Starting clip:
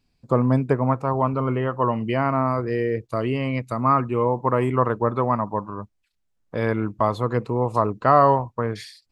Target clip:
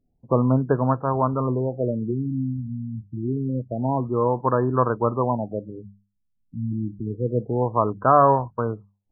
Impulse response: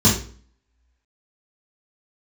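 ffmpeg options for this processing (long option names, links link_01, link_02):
-af "bandreject=frequency=50:width_type=h:width=6,bandreject=frequency=100:width_type=h:width=6,bandreject=frequency=150:width_type=h:width=6,bandreject=frequency=200:width_type=h:width=6,afftfilt=real='re*lt(b*sr/1024,280*pow(1800/280,0.5+0.5*sin(2*PI*0.27*pts/sr)))':imag='im*lt(b*sr/1024,280*pow(1800/280,0.5+0.5*sin(2*PI*0.27*pts/sr)))':win_size=1024:overlap=0.75"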